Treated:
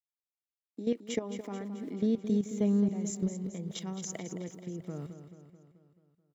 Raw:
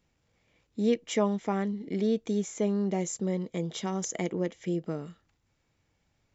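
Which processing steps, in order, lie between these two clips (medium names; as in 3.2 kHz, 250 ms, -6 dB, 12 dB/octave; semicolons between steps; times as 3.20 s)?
small samples zeroed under -54 dBFS; gate -43 dBFS, range -15 dB; compression 2:1, threshold -33 dBFS, peak gain reduction 7.5 dB; high-pass sweep 270 Hz -> 120 Hz, 1.19–4.66 s; level held to a coarse grid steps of 13 dB; feedback delay 217 ms, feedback 57%, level -10.5 dB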